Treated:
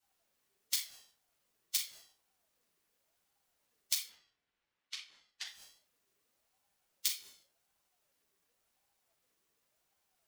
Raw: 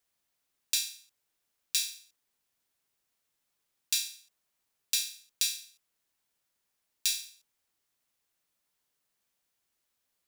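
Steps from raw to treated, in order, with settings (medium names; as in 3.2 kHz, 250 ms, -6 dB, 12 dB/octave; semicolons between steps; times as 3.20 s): in parallel at -6.5 dB: small samples zeroed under -41.5 dBFS; on the sum: harmonic-percussive split harmonic -15 dB; inverted gate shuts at -25 dBFS, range -25 dB; 4.07–5.46 s: band-pass 740–3000 Hz; reverberation RT60 0.40 s, pre-delay 4 ms, DRR -7.5 dB; ring modulator with a swept carrier 600 Hz, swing 35%, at 0.9 Hz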